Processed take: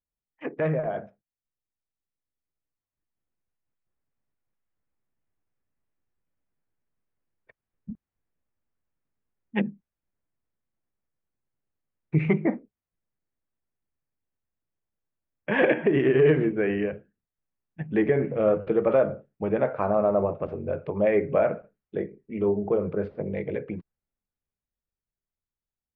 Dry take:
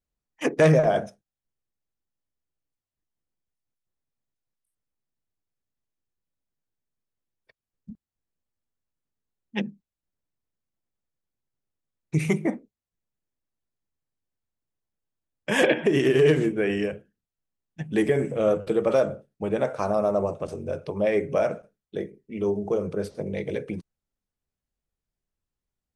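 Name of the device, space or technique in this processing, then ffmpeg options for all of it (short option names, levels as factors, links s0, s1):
action camera in a waterproof case: -af "lowpass=f=2400:w=0.5412,lowpass=f=2400:w=1.3066,dynaudnorm=f=400:g=13:m=5.01,volume=0.376" -ar 44100 -c:a aac -b:a 96k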